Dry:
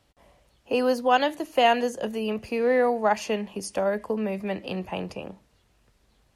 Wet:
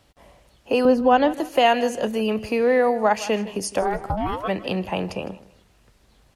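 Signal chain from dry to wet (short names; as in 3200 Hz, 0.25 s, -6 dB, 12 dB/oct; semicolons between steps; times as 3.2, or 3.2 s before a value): 0.85–1.34 tilt -3.5 dB/oct; 3.81–4.47 ring modulator 160 Hz -> 920 Hz; feedback echo 0.158 s, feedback 28%, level -18 dB; in parallel at +1 dB: compressor, threshold -27 dBFS, peak gain reduction 13 dB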